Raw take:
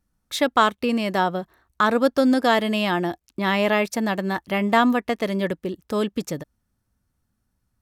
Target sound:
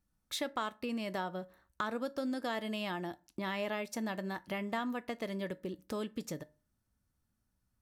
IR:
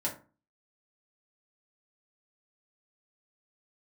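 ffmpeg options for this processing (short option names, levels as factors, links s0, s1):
-filter_complex "[0:a]acompressor=threshold=0.0282:ratio=2.5,asplit=2[s0][s1];[1:a]atrim=start_sample=2205,highshelf=f=2000:g=11[s2];[s1][s2]afir=irnorm=-1:irlink=0,volume=0.106[s3];[s0][s3]amix=inputs=2:normalize=0,volume=0.398"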